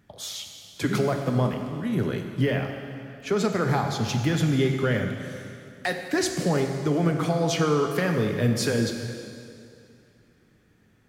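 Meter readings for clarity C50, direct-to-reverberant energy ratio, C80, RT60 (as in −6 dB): 5.0 dB, 4.0 dB, 6.0 dB, 2.5 s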